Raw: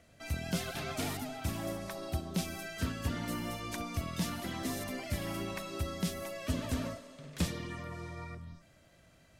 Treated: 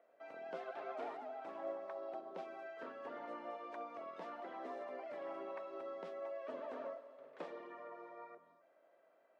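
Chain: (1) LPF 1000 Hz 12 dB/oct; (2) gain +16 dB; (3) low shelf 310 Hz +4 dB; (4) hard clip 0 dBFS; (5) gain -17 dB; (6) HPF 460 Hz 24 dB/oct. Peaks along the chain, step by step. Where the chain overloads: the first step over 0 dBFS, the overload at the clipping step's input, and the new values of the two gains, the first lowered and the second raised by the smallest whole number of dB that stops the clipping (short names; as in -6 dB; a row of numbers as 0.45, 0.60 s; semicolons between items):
-20.0, -4.0, -1.5, -1.5, -18.5, -32.0 dBFS; no overload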